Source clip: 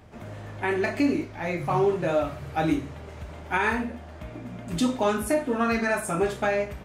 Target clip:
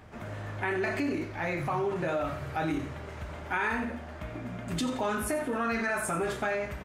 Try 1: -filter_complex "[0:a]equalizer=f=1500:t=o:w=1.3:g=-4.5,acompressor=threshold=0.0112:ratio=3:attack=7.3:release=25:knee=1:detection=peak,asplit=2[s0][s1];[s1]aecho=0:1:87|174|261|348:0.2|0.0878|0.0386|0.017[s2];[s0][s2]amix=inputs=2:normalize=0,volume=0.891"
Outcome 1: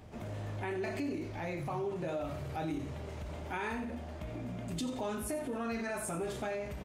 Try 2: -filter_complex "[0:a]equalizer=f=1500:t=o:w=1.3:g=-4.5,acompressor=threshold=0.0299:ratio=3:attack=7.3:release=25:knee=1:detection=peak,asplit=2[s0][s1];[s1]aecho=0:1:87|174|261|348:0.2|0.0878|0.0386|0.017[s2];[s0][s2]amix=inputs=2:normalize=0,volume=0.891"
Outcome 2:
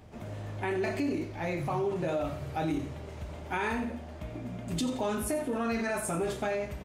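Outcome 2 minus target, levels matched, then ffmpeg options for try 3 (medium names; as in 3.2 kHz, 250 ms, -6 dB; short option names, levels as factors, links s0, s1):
2 kHz band -4.5 dB
-filter_complex "[0:a]equalizer=f=1500:t=o:w=1.3:g=5,acompressor=threshold=0.0299:ratio=3:attack=7.3:release=25:knee=1:detection=peak,asplit=2[s0][s1];[s1]aecho=0:1:87|174|261|348:0.2|0.0878|0.0386|0.017[s2];[s0][s2]amix=inputs=2:normalize=0,volume=0.891"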